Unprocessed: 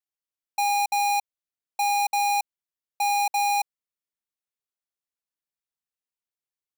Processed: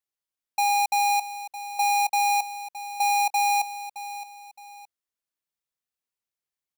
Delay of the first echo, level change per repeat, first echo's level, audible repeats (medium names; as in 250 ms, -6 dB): 617 ms, -9.5 dB, -13.5 dB, 2